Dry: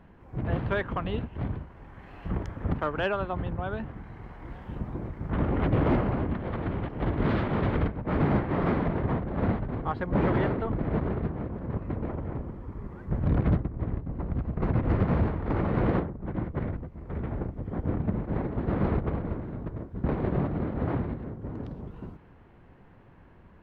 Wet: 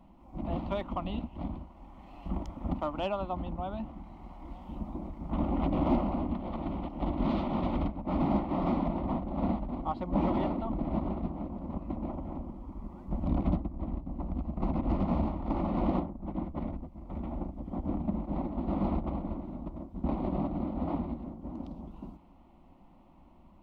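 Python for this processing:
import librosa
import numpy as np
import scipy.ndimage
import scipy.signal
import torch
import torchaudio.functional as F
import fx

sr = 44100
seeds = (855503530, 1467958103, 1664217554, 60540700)

y = fx.fixed_phaser(x, sr, hz=440.0, stages=6)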